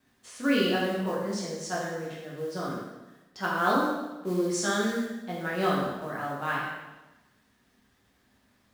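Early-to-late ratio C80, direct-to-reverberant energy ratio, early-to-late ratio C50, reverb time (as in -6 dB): 3.0 dB, -6.0 dB, 1.0 dB, 1.1 s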